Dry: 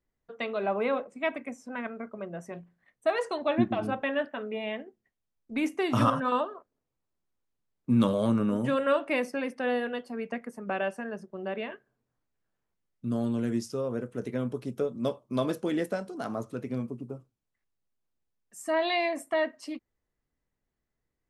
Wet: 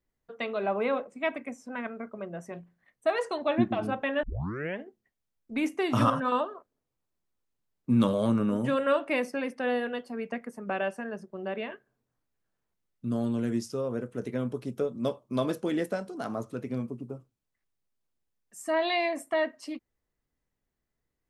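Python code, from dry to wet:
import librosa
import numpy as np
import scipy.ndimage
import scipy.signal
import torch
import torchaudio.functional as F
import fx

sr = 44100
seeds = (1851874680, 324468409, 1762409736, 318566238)

y = fx.edit(x, sr, fx.tape_start(start_s=4.23, length_s=0.57), tone=tone)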